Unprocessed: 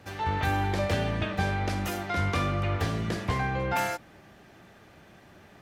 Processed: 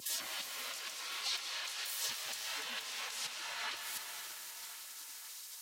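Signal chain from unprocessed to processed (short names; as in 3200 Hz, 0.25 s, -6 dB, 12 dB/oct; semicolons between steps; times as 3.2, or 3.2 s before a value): 3.06–3.6 low shelf 170 Hz +5 dB; spectral gate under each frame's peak -30 dB weak; negative-ratio compressor -59 dBFS, ratio -1; thinning echo 0.529 s, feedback 70%, high-pass 310 Hz, level -13 dB; vibrato 0.99 Hz 9 cents; HPF 81 Hz 24 dB/oct; reverb RT60 4.0 s, pre-delay 0.118 s, DRR 4.5 dB; gain +15 dB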